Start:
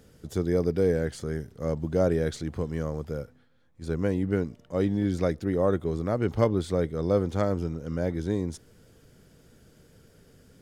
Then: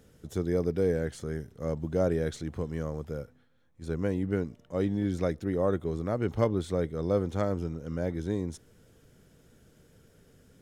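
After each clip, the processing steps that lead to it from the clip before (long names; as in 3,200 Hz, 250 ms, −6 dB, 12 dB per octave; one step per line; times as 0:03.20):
notch filter 4,700 Hz, Q 11
level −3 dB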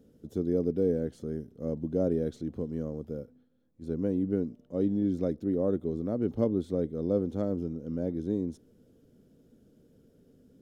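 octave-band graphic EQ 250/500/1,000/2,000/8,000 Hz +12/+5/−4/−8/−6 dB
level −7.5 dB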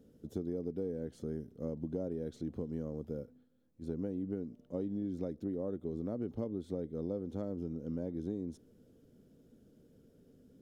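downward compressor 10 to 1, threshold −31 dBFS, peak gain reduction 11 dB
level −2 dB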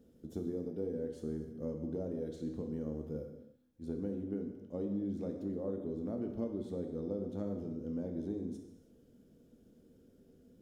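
reverb whose tail is shaped and stops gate 350 ms falling, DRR 3 dB
level −2 dB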